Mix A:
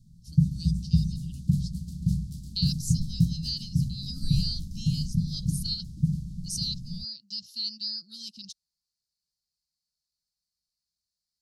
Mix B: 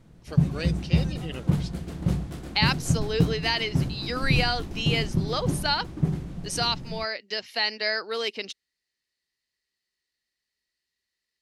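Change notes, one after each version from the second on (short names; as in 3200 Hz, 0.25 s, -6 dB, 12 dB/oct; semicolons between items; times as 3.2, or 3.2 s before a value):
master: remove elliptic band-stop 190–4600 Hz, stop band 40 dB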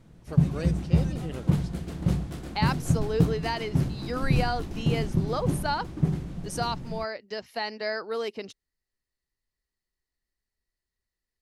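speech: remove weighting filter D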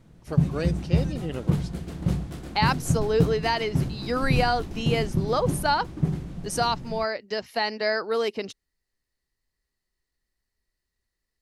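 speech +5.5 dB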